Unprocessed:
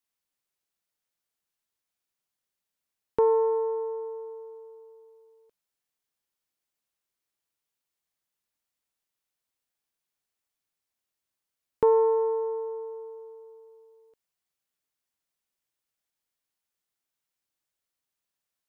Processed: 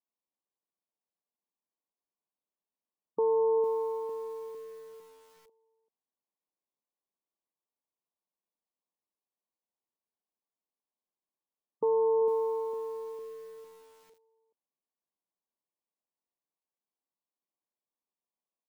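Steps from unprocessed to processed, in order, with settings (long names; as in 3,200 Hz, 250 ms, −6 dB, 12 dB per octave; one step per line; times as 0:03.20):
gain on one half-wave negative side −7 dB
brickwall limiter −21.5 dBFS, peak gain reduction 8 dB
leveller curve on the samples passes 1
linear-phase brick-wall band-pass 160–1,200 Hz
high-frequency loss of the air 83 metres
on a send: single-tap delay 388 ms −15.5 dB
on the sum: feedback echo at a low word length 454 ms, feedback 55%, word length 9 bits, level −10.5 dB
level +1.5 dB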